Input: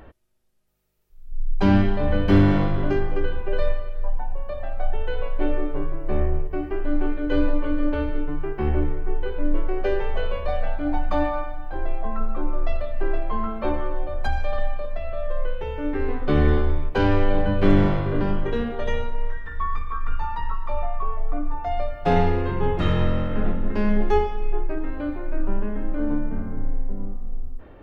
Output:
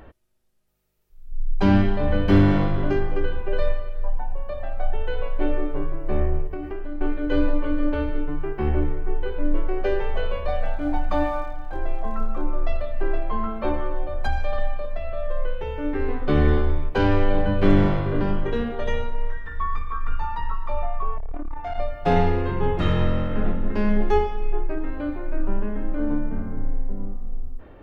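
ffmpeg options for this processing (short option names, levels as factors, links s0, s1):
-filter_complex "[0:a]asettb=1/sr,asplit=3[s0][s1][s2];[s0]atrim=end=6.534[s3];[s1]atrim=start=6.53:end=7.01,asetpts=PTS-STARTPTS,afade=t=in:d=0.004:c=qsin,afade=t=out:st=0.476:d=0.004:c=qsin,acompressor=threshold=0.0562:ratio=6:attack=3.2:release=140:knee=1:detection=peak[s4];[s2]atrim=start=7.006[s5];[s3][s4]acrossfade=d=0.004:c1=hsin:c2=qsin[s6];[s6][s5]acrossfade=d=0.004:c1=qsin:c2=hsin,asettb=1/sr,asplit=3[s7][s8][s9];[s7]atrim=end=10.604[s10];[s8]atrim=start=10.6:end=12.43,asetpts=PTS-STARTPTS,afade=t=in:d=0.004:c=qsin,afade=t=out:st=1.826:d=0.004:c=qsin,aeval=exprs='sgn(val(0))*max(abs(val(0))-0.00282,0)':c=same[s11];[s9]atrim=start=12.426[s12];[s10][s11]acrossfade=d=0.004:c1=hsin:c2=qsin[s13];[s13][s12]acrossfade=d=0.004:c1=qsin:c2=hsin,asettb=1/sr,asplit=3[s14][s15][s16];[s14]atrim=end=21.184[s17];[s15]atrim=start=21.18:end=21.79,asetpts=PTS-STARTPTS,afade=t=in:d=0.004:c=qsin,afade=t=out:st=0.606:d=0.004:c=qsin,aeval=exprs='(tanh(15.8*val(0)+0.3)-tanh(0.3))/15.8':c=same[s18];[s16]atrim=start=21.786[s19];[s17][s18]acrossfade=d=0.004:c1=hsin:c2=qsin[s20];[s20][s19]acrossfade=d=0.004:c1=qsin:c2=hsin"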